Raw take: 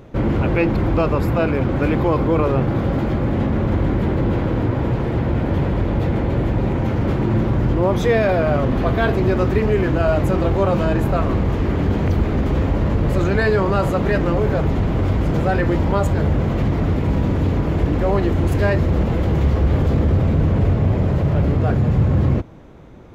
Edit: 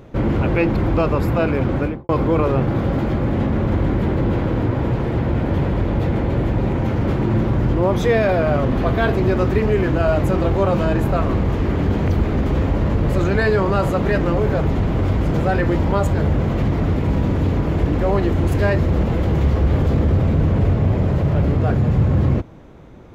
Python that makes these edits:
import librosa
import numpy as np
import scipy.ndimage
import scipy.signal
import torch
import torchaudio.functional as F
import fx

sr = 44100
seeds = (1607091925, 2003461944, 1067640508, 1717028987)

y = fx.studio_fade_out(x, sr, start_s=1.73, length_s=0.36)